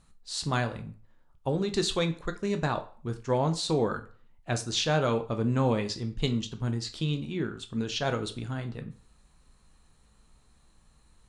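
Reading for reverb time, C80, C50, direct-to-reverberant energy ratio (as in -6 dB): 0.45 s, 18.5 dB, 14.5 dB, 7.0 dB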